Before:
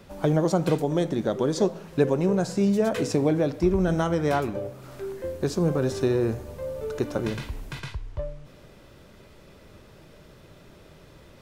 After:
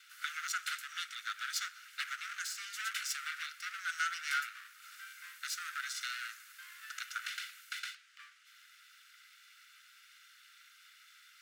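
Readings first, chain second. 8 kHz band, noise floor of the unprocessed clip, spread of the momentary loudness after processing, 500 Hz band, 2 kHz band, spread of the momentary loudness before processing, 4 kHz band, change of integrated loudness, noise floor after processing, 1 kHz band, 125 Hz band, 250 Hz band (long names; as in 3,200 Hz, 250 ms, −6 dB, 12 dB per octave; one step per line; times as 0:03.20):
−0.5 dB, −51 dBFS, 22 LU, below −40 dB, +1.5 dB, 14 LU, +0.5 dB, −13.5 dB, −62 dBFS, −9.5 dB, below −40 dB, below −40 dB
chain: lower of the sound and its delayed copy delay 1.4 ms
Butterworth high-pass 1,300 Hz 96 dB per octave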